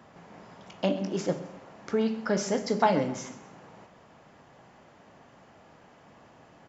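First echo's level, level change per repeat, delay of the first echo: −16.5 dB, −8.5 dB, 131 ms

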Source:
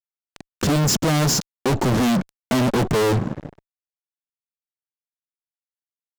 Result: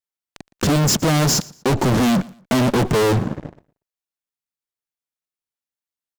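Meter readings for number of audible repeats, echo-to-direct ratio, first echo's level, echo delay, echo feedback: 2, −21.5 dB, −22.0 dB, 117 ms, 28%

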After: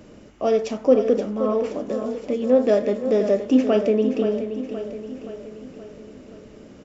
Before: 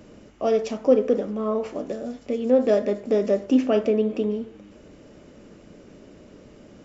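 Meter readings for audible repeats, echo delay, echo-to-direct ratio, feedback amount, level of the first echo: 5, 524 ms, −8.5 dB, 54%, −10.0 dB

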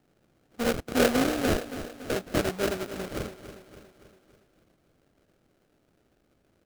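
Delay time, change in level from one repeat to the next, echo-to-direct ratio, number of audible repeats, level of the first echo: 283 ms, −5.5 dB, −11.0 dB, 5, −12.5 dB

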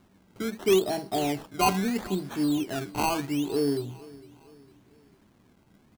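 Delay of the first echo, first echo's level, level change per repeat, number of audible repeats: 456 ms, −21.0 dB, −7.0 dB, 3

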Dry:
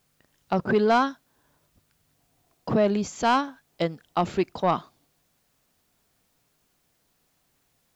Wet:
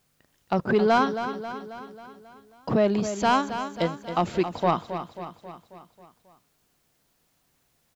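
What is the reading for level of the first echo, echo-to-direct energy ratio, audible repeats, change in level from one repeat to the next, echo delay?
−10.0 dB, −8.5 dB, 5, −5.0 dB, 270 ms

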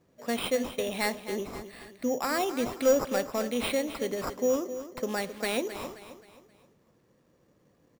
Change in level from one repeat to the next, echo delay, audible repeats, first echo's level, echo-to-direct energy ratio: −7.5 dB, 264 ms, 3, −12.0 dB, −11.0 dB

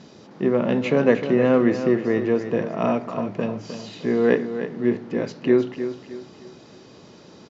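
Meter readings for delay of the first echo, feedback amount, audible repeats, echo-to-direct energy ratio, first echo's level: 308 ms, 36%, 3, −9.5 dB, −10.0 dB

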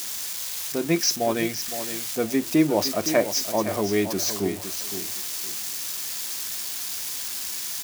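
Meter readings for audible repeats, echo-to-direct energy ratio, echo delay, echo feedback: 2, −10.5 dB, 514 ms, 22%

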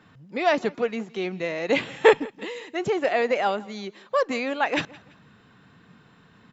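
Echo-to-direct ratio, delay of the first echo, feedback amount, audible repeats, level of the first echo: −22.0 dB, 168 ms, 33%, 2, −22.5 dB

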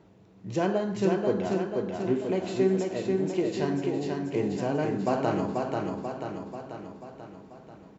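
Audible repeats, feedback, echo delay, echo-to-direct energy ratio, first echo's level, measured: 7, 57%, 488 ms, −2.0 dB, −3.5 dB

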